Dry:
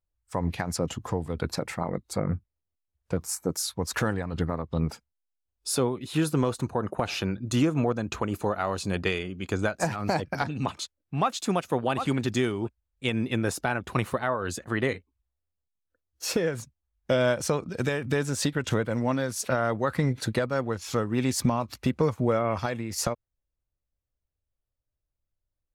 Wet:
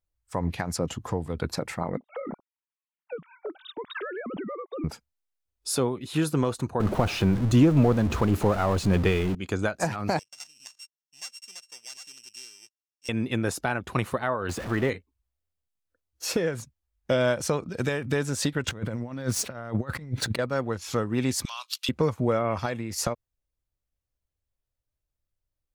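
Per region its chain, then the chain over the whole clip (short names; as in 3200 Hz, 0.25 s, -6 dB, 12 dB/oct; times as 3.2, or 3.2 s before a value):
1.97–4.84 sine-wave speech + compressor, threshold -31 dBFS
6.8–9.35 zero-crossing step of -30 dBFS + tilt -2 dB/oct
10.19–13.09 sample sorter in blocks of 16 samples + band-pass 6400 Hz, Q 3.5
14.49–14.9 zero-crossing step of -30 dBFS + high shelf 2900 Hz -11 dB + mismatched tape noise reduction encoder only
18.68–20.39 median filter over 3 samples + negative-ratio compressor -32 dBFS, ratio -0.5 + tone controls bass +5 dB, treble 0 dB
21.45–21.89 HPF 1200 Hz 24 dB/oct + resonant high shelf 2500 Hz +8 dB, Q 3
whole clip: dry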